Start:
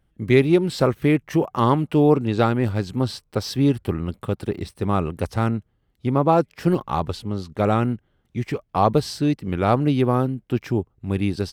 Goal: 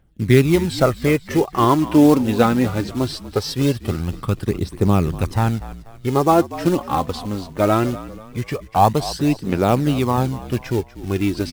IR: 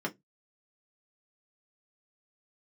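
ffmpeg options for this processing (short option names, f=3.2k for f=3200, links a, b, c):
-filter_complex "[0:a]asettb=1/sr,asplit=3[a][b][c];[a]atrim=end=8.944[d];[b]atrim=start=8.94:end=10.18,asetpts=PTS-STARTPTS,afade=t=in:d=0.004:c=qsin,afade=t=out:st=1.236:d=0.004:c=qsin,lowshelf=f=130:g=-11[e];[c]atrim=start=10.176[f];[d][e]acrossfade=d=0.004:c1=hsin:c2=qsin[g];[g][f]acrossfade=d=0.004:c1=qsin:c2=hsin,acrusher=bits=5:mode=log:mix=0:aa=0.000001,aphaser=in_gain=1:out_gain=1:delay=4.1:decay=0.49:speed=0.21:type=triangular,asplit=2[h][i];[i]asplit=4[j][k][l][m];[j]adelay=242,afreqshift=-52,volume=-15.5dB[n];[k]adelay=484,afreqshift=-104,volume=-22.6dB[o];[l]adelay=726,afreqshift=-156,volume=-29.8dB[p];[m]adelay=968,afreqshift=-208,volume=-36.9dB[q];[n][o][p][q]amix=inputs=4:normalize=0[r];[h][r]amix=inputs=2:normalize=0,volume=2dB"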